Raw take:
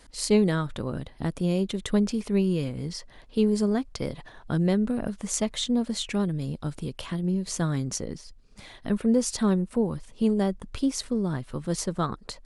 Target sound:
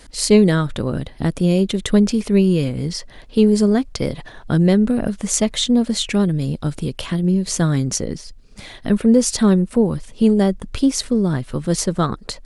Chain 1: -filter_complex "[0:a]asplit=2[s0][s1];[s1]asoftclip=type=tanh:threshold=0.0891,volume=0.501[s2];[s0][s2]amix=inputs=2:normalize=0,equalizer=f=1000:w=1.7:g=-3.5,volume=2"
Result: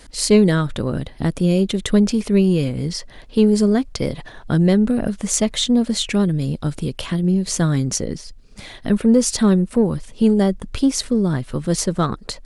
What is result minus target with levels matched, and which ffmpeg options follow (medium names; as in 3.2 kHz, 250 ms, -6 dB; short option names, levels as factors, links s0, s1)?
saturation: distortion +9 dB
-filter_complex "[0:a]asplit=2[s0][s1];[s1]asoftclip=type=tanh:threshold=0.2,volume=0.501[s2];[s0][s2]amix=inputs=2:normalize=0,equalizer=f=1000:w=1.7:g=-3.5,volume=2"